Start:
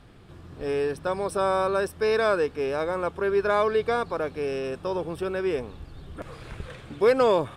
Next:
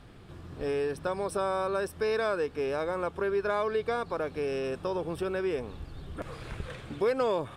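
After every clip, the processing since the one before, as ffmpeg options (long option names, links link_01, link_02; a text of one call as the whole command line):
ffmpeg -i in.wav -af "acompressor=threshold=-30dB:ratio=2" out.wav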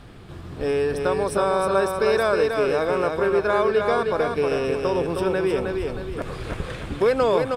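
ffmpeg -i in.wav -af "aecho=1:1:314|628|942|1256|1570:0.596|0.244|0.1|0.0411|0.0168,volume=7.5dB" out.wav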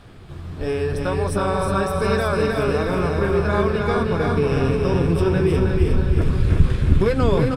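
ffmpeg -i in.wav -af "asubboost=boost=7.5:cutoff=200,flanger=delay=9.4:depth=5.5:regen=-37:speed=1.4:shape=triangular,aecho=1:1:360|720|1080|1440|1800|2160|2520:0.501|0.276|0.152|0.0834|0.0459|0.0252|0.0139,volume=3.5dB" out.wav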